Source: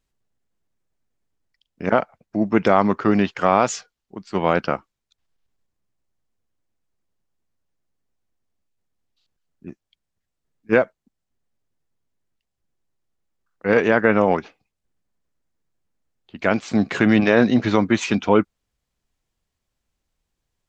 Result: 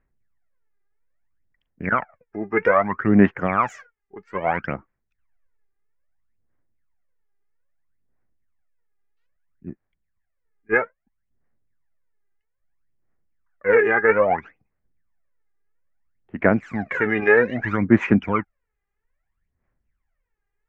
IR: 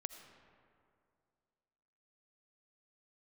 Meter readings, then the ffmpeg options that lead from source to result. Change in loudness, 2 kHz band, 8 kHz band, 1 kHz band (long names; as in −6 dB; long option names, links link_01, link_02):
−0.5 dB, +2.5 dB, can't be measured, −2.0 dB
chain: -af "aphaser=in_gain=1:out_gain=1:delay=2.5:decay=0.78:speed=0.61:type=sinusoidal,highshelf=frequency=2800:width_type=q:width=3:gain=-13.5,volume=-7dB"